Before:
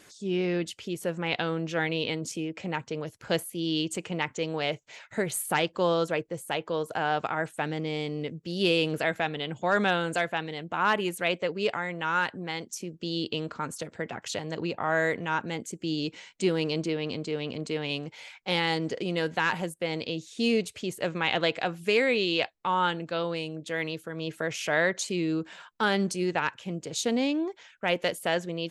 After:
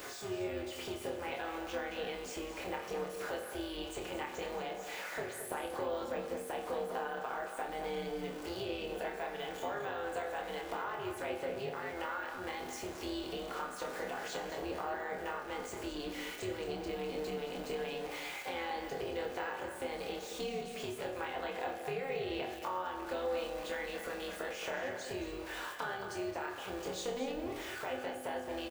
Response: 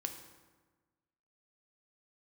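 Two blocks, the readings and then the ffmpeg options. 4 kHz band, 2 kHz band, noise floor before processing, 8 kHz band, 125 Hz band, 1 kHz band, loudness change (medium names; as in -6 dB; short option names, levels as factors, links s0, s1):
-12.5 dB, -11.5 dB, -58 dBFS, -10.0 dB, -16.5 dB, -8.5 dB, -10.0 dB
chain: -filter_complex "[0:a]aeval=exprs='val(0)+0.5*0.0211*sgn(val(0))':c=same,bandreject=f=490:w=13,deesser=0.95,highpass=f=360:w=0.5412,highpass=f=360:w=1.3066,acompressor=threshold=0.0141:ratio=6,tremolo=f=270:d=0.71,asplit=2[s0][s1];[s1]adelay=27,volume=0.531[s2];[s0][s2]amix=inputs=2:normalize=0,asplit=2[s3][s4];[s4]adelay=221.6,volume=0.398,highshelf=f=4000:g=-4.99[s5];[s3][s5]amix=inputs=2:normalize=0[s6];[1:a]atrim=start_sample=2205,asetrate=66150,aresample=44100[s7];[s6][s7]afir=irnorm=-1:irlink=0,volume=2.11"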